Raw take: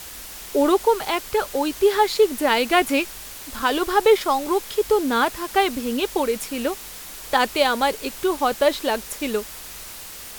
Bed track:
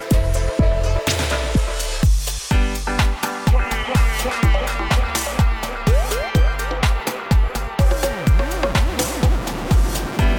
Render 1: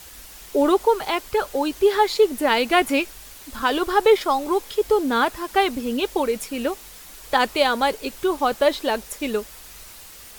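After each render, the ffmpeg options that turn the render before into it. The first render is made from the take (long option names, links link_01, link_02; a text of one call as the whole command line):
ffmpeg -i in.wav -af "afftdn=noise_reduction=6:noise_floor=-38" out.wav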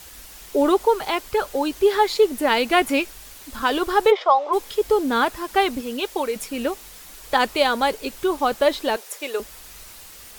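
ffmpeg -i in.wav -filter_complex "[0:a]asplit=3[link_01][link_02][link_03];[link_01]afade=type=out:start_time=4.1:duration=0.02[link_04];[link_02]highpass=frequency=480:width=0.5412,highpass=frequency=480:width=1.3066,equalizer=frequency=490:width_type=q:width=4:gain=8,equalizer=frequency=700:width_type=q:width=4:gain=8,equalizer=frequency=1100:width_type=q:width=4:gain=6,equalizer=frequency=1600:width_type=q:width=4:gain=-5,equalizer=frequency=2500:width_type=q:width=4:gain=-4,equalizer=frequency=4300:width_type=q:width=4:gain=-7,lowpass=frequency=4600:width=0.5412,lowpass=frequency=4600:width=1.3066,afade=type=in:start_time=4.1:duration=0.02,afade=type=out:start_time=4.52:duration=0.02[link_05];[link_03]afade=type=in:start_time=4.52:duration=0.02[link_06];[link_04][link_05][link_06]amix=inputs=3:normalize=0,asettb=1/sr,asplit=3[link_07][link_08][link_09];[link_07]atrim=end=5.814[link_10];[link_08]atrim=start=5.81:end=6.36,asetpts=PTS-STARTPTS,afade=type=in:duration=0.004:curve=qsin,afade=type=out:start_time=0.546:duration=0.004:curve=qsin,lowshelf=frequency=290:gain=-9.5[link_11];[link_09]atrim=start=6.356[link_12];[link_10][link_11]acrossfade=duration=0.004:curve1=hsin:curve2=qsin[link_13];[link_13][link_12]acrossfade=duration=0.004:curve1=qsin:curve2=hsin,asettb=1/sr,asplit=3[link_14][link_15][link_16];[link_14]atrim=end=8.964[link_17];[link_15]atrim=start=8.96:end=9.4,asetpts=PTS-STARTPTS,afade=type=in:duration=0.004:curve=qsin,afade=type=out:start_time=0.436:duration=0.004:curve=qsin,highpass=frequency=390:width=0.5412,highpass=frequency=390:width=1.3066[link_18];[link_16]atrim=start=9.396[link_19];[link_17][link_18]acrossfade=duration=0.004:curve1=hsin:curve2=qsin[link_20];[link_20][link_19]acrossfade=duration=0.004:curve1=qsin:curve2=hsin" out.wav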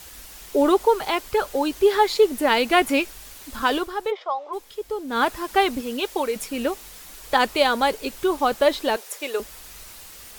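ffmpeg -i in.wav -filter_complex "[0:a]asplit=3[link_01][link_02][link_03];[link_01]atrim=end=3.9,asetpts=PTS-STARTPTS,afade=type=out:start_time=3.74:duration=0.16:silence=0.316228[link_04];[link_02]atrim=start=3.9:end=5.08,asetpts=PTS-STARTPTS,volume=-10dB[link_05];[link_03]atrim=start=5.08,asetpts=PTS-STARTPTS,afade=type=in:duration=0.16:silence=0.316228[link_06];[link_04][link_05][link_06]concat=n=3:v=0:a=1" out.wav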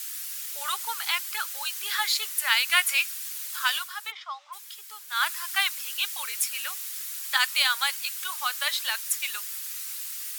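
ffmpeg -i in.wav -af "highpass=frequency=1300:width=0.5412,highpass=frequency=1300:width=1.3066,aemphasis=mode=production:type=cd" out.wav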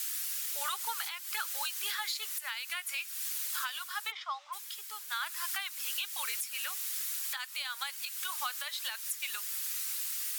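ffmpeg -i in.wav -af "acompressor=threshold=-30dB:ratio=6,alimiter=limit=-23.5dB:level=0:latency=1:release=272" out.wav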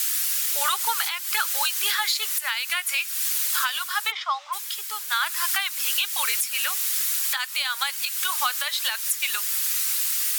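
ffmpeg -i in.wav -af "volume=11.5dB" out.wav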